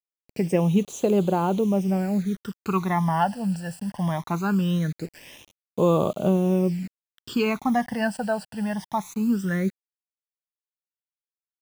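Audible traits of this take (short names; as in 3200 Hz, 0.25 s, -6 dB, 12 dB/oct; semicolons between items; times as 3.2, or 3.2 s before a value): a quantiser's noise floor 8-bit, dither none; phasing stages 12, 0.21 Hz, lowest notch 370–1800 Hz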